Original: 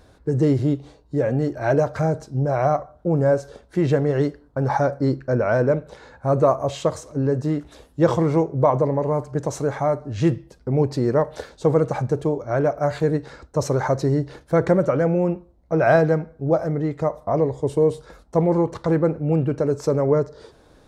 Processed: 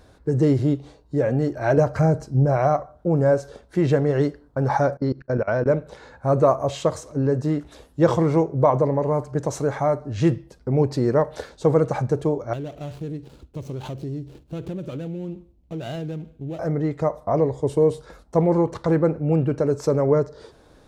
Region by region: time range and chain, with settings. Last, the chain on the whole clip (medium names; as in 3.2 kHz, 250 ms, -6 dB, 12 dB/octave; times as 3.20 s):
1.77–2.57 s: bass shelf 230 Hz +6 dB + band-stop 3.6 kHz, Q 5.7
4.97–5.66 s: steep low-pass 6.1 kHz + expander -40 dBFS + level held to a coarse grid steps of 21 dB
12.53–16.59 s: median filter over 25 samples + high-order bell 980 Hz -9.5 dB 2.4 oct + compression 3:1, threshold -30 dBFS
whole clip: none